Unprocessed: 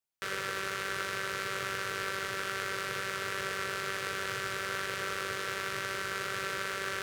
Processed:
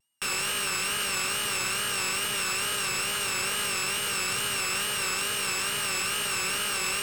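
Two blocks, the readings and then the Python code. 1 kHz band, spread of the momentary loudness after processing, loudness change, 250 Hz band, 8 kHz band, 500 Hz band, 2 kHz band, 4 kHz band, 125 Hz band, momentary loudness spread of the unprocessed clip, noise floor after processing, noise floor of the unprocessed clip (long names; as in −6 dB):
+3.0 dB, 0 LU, +7.5 dB, +4.0 dB, +15.5 dB, 0.0 dB, +4.0 dB, +10.5 dB, +3.0 dB, 0 LU, −30 dBFS, −37 dBFS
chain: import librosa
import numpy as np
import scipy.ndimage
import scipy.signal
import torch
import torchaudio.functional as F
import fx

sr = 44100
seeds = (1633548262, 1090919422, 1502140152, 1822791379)

y = np.r_[np.sort(x[:len(x) // 16 * 16].reshape(-1, 16), axis=1).ravel(), x[len(x) // 16 * 16:]]
y = fx.notch_comb(y, sr, f0_hz=350.0)
y = np.clip(y, -10.0 ** (-37.0 / 20.0), 10.0 ** (-37.0 / 20.0))
y = fx.graphic_eq(y, sr, hz=(125, 250, 500, 1000, 2000, 4000, 8000), db=(-4, 6, -6, 3, 3, 3, 11))
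y = fx.vibrato(y, sr, rate_hz=2.3, depth_cents=86.0)
y = fx.notch(y, sr, hz=5800.0, q=11.0)
y = y * 10.0 ** (7.5 / 20.0)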